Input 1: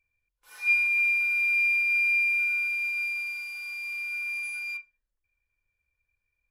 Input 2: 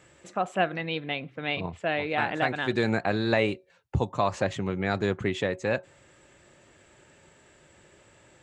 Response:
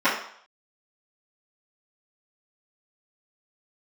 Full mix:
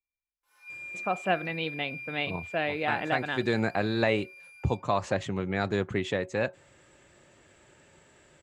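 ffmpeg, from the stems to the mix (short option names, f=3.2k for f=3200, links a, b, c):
-filter_complex "[0:a]volume=-19.5dB,asplit=2[a][b];[b]volume=-17dB[c];[1:a]adelay=700,volume=-1.5dB[d];[2:a]atrim=start_sample=2205[e];[c][e]afir=irnorm=-1:irlink=0[f];[a][d][f]amix=inputs=3:normalize=0"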